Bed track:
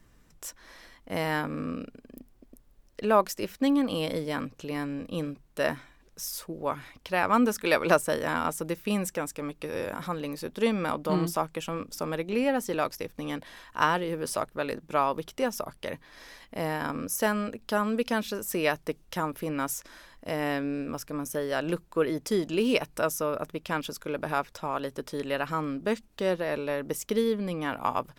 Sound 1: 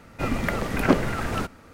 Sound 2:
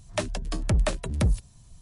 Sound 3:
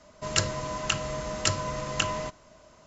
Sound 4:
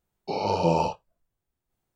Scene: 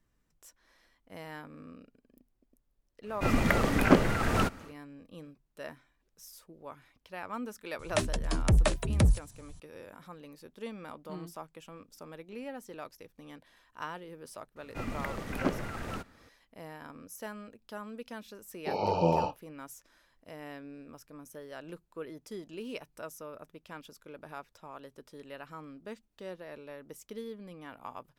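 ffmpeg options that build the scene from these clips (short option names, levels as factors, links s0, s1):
-filter_complex "[1:a]asplit=2[s0][s1];[0:a]volume=0.168[s2];[s0]dynaudnorm=f=170:g=3:m=1.68[s3];[4:a]aemphasis=mode=reproduction:type=50fm[s4];[s3]atrim=end=1.73,asetpts=PTS-STARTPTS,volume=0.668,afade=t=in:d=0.1,afade=t=out:st=1.63:d=0.1,adelay=3020[s5];[2:a]atrim=end=1.81,asetpts=PTS-STARTPTS,volume=0.944,afade=t=in:d=0.004:c=hsin,afade=t=out:st=1.806:d=0.004:c=hsin,adelay=7790[s6];[s1]atrim=end=1.73,asetpts=PTS-STARTPTS,volume=0.282,afade=t=in:d=0.004:c=hsin,afade=t=out:st=1.726:d=0.004:c=hsin,adelay=14560[s7];[s4]atrim=end=1.95,asetpts=PTS-STARTPTS,volume=0.631,afade=t=in:d=0.004:c=hsin,afade=t=out:st=1.946:d=0.004:c=hsin,adelay=18380[s8];[s2][s5][s6][s7][s8]amix=inputs=5:normalize=0"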